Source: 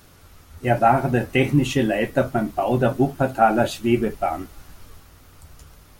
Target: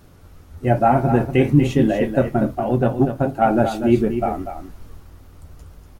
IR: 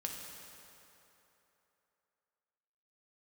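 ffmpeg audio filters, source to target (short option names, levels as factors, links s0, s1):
-filter_complex "[0:a]tiltshelf=f=970:g=5.5,asettb=1/sr,asplit=3[s0][s1][s2];[s0]atrim=end=2.554[s3];[s1]atrim=start=2.55:end=3.47,asetpts=PTS-STARTPTS,afade=t=in:d=0.004:c=qsin,afade=t=out:st=0.916:d=0.004:c=qsin,aeval=exprs='0.794*(cos(1*acos(clip(val(0)/0.794,-1,1)))-cos(1*PI/2))+0.0708*(cos(3*acos(clip(val(0)/0.794,-1,1)))-cos(3*PI/2))':c=same[s4];[s2]atrim=start=3.466[s5];[s3][s4]acrossfade=d=0.004:c1=hsin:c2=qsin[s6];[s6][s5]acrossfade=d=0.004:c1=qsin:c2=hsin,aecho=1:1:242:0.355,volume=0.891"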